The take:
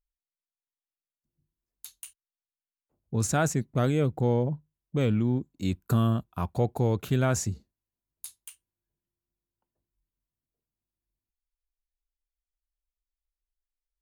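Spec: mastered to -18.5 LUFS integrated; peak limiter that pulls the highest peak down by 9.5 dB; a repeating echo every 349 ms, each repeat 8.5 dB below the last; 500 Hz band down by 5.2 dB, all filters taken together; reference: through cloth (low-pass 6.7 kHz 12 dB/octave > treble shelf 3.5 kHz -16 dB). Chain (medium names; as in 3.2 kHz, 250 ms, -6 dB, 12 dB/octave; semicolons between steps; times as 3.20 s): peaking EQ 500 Hz -6 dB; peak limiter -24 dBFS; low-pass 6.7 kHz 12 dB/octave; treble shelf 3.5 kHz -16 dB; feedback delay 349 ms, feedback 38%, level -8.5 dB; trim +16.5 dB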